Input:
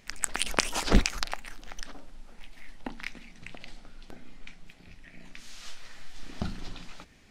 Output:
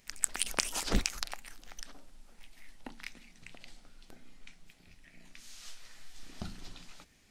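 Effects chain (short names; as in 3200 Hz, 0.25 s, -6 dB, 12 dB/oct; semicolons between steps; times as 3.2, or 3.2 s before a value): high shelf 5300 Hz +11.5 dB; gain -8.5 dB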